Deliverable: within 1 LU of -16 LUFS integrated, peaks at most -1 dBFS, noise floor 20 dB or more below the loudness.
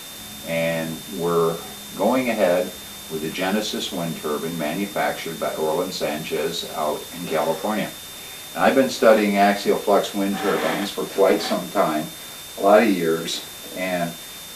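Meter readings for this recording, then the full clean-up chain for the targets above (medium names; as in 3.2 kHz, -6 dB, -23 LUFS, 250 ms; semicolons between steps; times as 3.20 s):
steady tone 3.6 kHz; tone level -40 dBFS; noise floor -37 dBFS; noise floor target -42 dBFS; loudness -22.0 LUFS; peak level -2.0 dBFS; loudness target -16.0 LUFS
-> band-stop 3.6 kHz, Q 30; noise print and reduce 6 dB; trim +6 dB; peak limiter -1 dBFS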